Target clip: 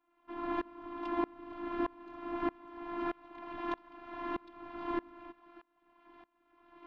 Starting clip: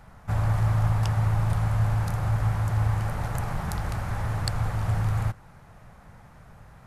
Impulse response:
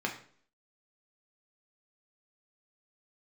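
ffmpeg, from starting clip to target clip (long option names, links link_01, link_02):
-af "aeval=exprs='abs(val(0))':channel_layout=same,highpass=200,equalizer=frequency=270:width_type=q:width=4:gain=10,equalizer=frequency=390:width_type=q:width=4:gain=-8,equalizer=frequency=580:width_type=q:width=4:gain=-5,equalizer=frequency=990:width_type=q:width=4:gain=6,equalizer=frequency=1500:width_type=q:width=4:gain=-3,equalizer=frequency=2100:width_type=q:width=4:gain=-3,lowpass=frequency=3300:width=0.5412,lowpass=frequency=3300:width=1.3066,afftfilt=real='hypot(re,im)*cos(PI*b)':imag='0':win_size=512:overlap=0.75,aeval=exprs='val(0)*pow(10,-27*if(lt(mod(-1.6*n/s,1),2*abs(-1.6)/1000),1-mod(-1.6*n/s,1)/(2*abs(-1.6)/1000),(mod(-1.6*n/s,1)-2*abs(-1.6)/1000)/(1-2*abs(-1.6)/1000))/20)':channel_layout=same,volume=5dB"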